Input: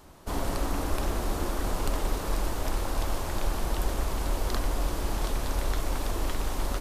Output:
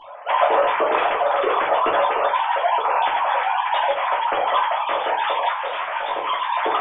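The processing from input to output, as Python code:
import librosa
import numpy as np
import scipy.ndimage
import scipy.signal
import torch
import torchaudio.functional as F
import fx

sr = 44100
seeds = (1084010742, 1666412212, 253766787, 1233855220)

y = fx.sine_speech(x, sr)
y = fx.room_shoebox(y, sr, seeds[0], volume_m3=180.0, walls='furnished', distance_m=2.9)
y = fx.detune_double(y, sr, cents=fx.line((5.53, 58.0), (6.26, 44.0)), at=(5.53, 6.26), fade=0.02)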